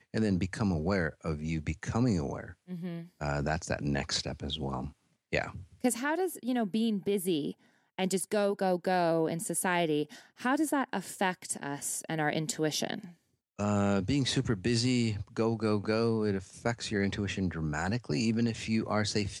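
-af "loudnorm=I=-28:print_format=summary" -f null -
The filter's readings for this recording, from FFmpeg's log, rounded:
Input Integrated:    -31.6 LUFS
Input True Peak:     -13.1 dBTP
Input LRA:             3.2 LU
Input Threshold:     -41.8 LUFS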